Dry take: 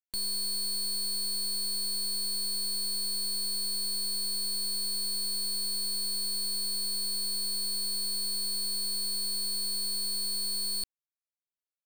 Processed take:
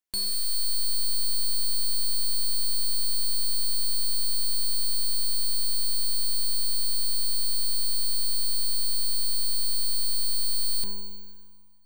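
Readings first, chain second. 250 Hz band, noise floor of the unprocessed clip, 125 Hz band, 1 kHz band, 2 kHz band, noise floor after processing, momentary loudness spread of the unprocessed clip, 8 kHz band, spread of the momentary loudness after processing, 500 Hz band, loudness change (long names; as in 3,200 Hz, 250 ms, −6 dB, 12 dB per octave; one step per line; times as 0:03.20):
−2.0 dB, below −85 dBFS, can't be measured, +2.5 dB, +4.0 dB, −40 dBFS, 0 LU, +3.0 dB, 0 LU, +1.5 dB, +3.5 dB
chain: four-comb reverb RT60 1.8 s, combs from 31 ms, DRR 8 dB
level +4.5 dB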